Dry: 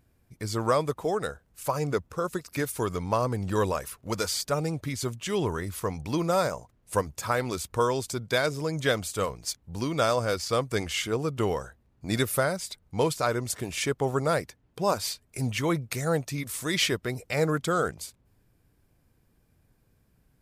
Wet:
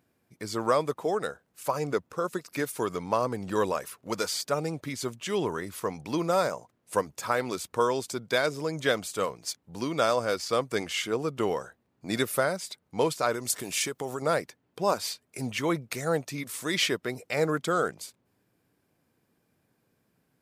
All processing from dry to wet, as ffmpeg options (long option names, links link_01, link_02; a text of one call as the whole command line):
ffmpeg -i in.wav -filter_complex "[0:a]asettb=1/sr,asplit=3[link_01][link_02][link_03];[link_01]atrim=end=13.344[link_04];[link_02]atrim=start=13.34:end=14.22,asetpts=PTS-STARTPTS,afade=type=in:duration=0.004:curve=qsin,afade=type=out:start_time=0.876:duration=0.004:curve=qsin,acompressor=threshold=-28dB:ratio=6:attack=3.2:release=140:knee=1:detection=peak,highshelf=frequency=4400:gain=12[link_05];[link_03]atrim=start=14.216[link_06];[link_04][link_05]acrossfade=duration=0.004:curve1=hsin:curve2=qsin[link_07];[link_07][link_06]acrossfade=duration=0.004:curve1=qsin:curve2=hsin,highpass=190,equalizer=frequency=12000:width=0.4:gain=-3" out.wav